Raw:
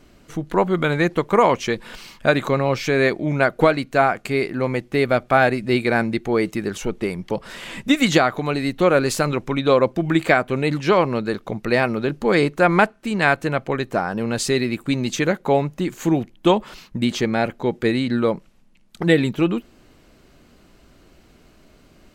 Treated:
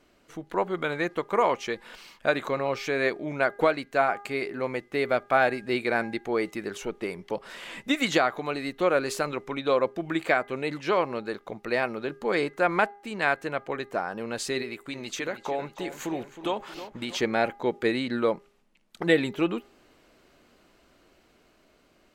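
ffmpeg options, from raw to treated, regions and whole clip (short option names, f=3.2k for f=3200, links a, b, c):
-filter_complex "[0:a]asettb=1/sr,asplit=3[a][b][c];[a]atrim=end=14.624[d];[b]atrim=start=14.62:end=17.17,asetpts=PTS-STARTPTS,afade=t=in:d=0.004:c=qsin,afade=t=out:st=2.546:d=0.004:c=qsin,equalizer=f=190:w=0.67:g=-5.5,acompressor=threshold=-22dB:ratio=3:attack=3.2:release=140:knee=1:detection=peak,asplit=2[e][f];[f]adelay=315,lowpass=f=4.1k:p=1,volume=-12dB,asplit=2[g][h];[h]adelay=315,lowpass=f=4.1k:p=1,volume=0.54,asplit=2[i][j];[j]adelay=315,lowpass=f=4.1k:p=1,volume=0.54,asplit=2[k][l];[l]adelay=315,lowpass=f=4.1k:p=1,volume=0.54,asplit=2[m][n];[n]adelay=315,lowpass=f=4.1k:p=1,volume=0.54,asplit=2[o][p];[p]adelay=315,lowpass=f=4.1k:p=1,volume=0.54[q];[e][g][i][k][m][o][q]amix=inputs=7:normalize=0,atrim=end_sample=112455[r];[c]atrim=start=17.166[s];[d][r]acrossfade=d=0.004:c1=hsin:c2=qsin[t];[t][s]acrossfade=d=0.004:c1=qsin:c2=hsin,bass=f=250:g=-11,treble=f=4k:g=-3,bandreject=f=405.6:t=h:w=4,bandreject=f=811.2:t=h:w=4,bandreject=f=1.2168k:t=h:w=4,bandreject=f=1.6224k:t=h:w=4,bandreject=f=2.028k:t=h:w=4,dynaudnorm=f=580:g=7:m=11.5dB,volume=-7dB"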